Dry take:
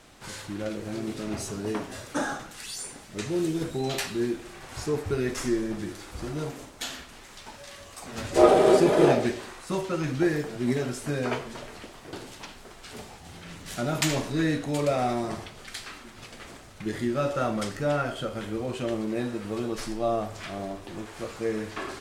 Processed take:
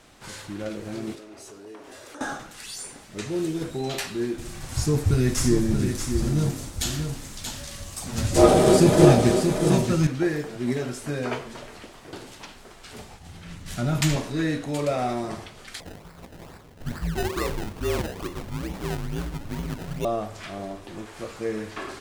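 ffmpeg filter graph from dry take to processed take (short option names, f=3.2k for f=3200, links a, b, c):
-filter_complex "[0:a]asettb=1/sr,asplit=3[a][b][c];[a]atrim=end=1.154[d];[b]atrim=start=1.15:end=2.21,asetpts=PTS-STARTPTS,afade=t=in:d=0.004:c=qsin,afade=t=out:st=1.056:d=0.004:c=qsin,acompressor=threshold=-39dB:ratio=10:attack=3.2:release=140:knee=1:detection=peak,lowshelf=f=250:t=q:w=1.5:g=-9[e];[c]atrim=start=2.206[f];[d][e]acrossfade=d=0.004:c1=hsin:c2=qsin[g];[g][f]acrossfade=d=0.004:c1=qsin:c2=hsin,asettb=1/sr,asplit=3[h][i][j];[h]atrim=end=4.384[k];[i]atrim=start=4.38:end=10.07,asetpts=PTS-STARTPTS,afade=t=in:d=0.004:c=qsin,afade=t=out:st=5.686:d=0.004:c=qsin,bass=f=250:g=14,treble=f=4k:g=10,bandreject=f=410:w=12,aecho=1:1:630:0.473,atrim=end_sample=250929[l];[j]atrim=start=10.066[m];[k][l]acrossfade=d=0.004:c1=hsin:c2=qsin[n];[n][m]acrossfade=d=0.004:c1=qsin:c2=hsin,asettb=1/sr,asplit=3[o][p][q];[o]atrim=end=12.794[r];[p]atrim=start=12.79:end=14.16,asetpts=PTS-STARTPTS,afade=t=in:d=0.004:c=qsin,afade=t=out:st=1.366:d=0.004:c=qsin,agate=range=-33dB:threshold=-41dB:ratio=3:release=100:detection=peak,asubboost=boost=8.5:cutoff=200,acompressor=mode=upward:threshold=-36dB:ratio=2.5:attack=3.2:release=140:knee=2.83:detection=peak[s];[q]atrim=start=14.156[t];[r][s]acrossfade=d=0.004:c1=hsin:c2=qsin[u];[u][t]acrossfade=d=0.004:c1=qsin:c2=hsin,asettb=1/sr,asplit=3[v][w][x];[v]atrim=end=15.804[y];[w]atrim=start=15.8:end=20.05,asetpts=PTS-STARTPTS,afade=t=in:d=0.004:c=qsin,afade=t=out:st=4.246:d=0.004:c=qsin,afreqshift=-190,acrusher=samples=27:mix=1:aa=0.000001:lfo=1:lforange=27:lforate=2.3[z];[x]atrim=start=20.046[aa];[y][z]acrossfade=d=0.004:c1=hsin:c2=qsin[ab];[ab][aa]acrossfade=d=0.004:c1=qsin:c2=hsin"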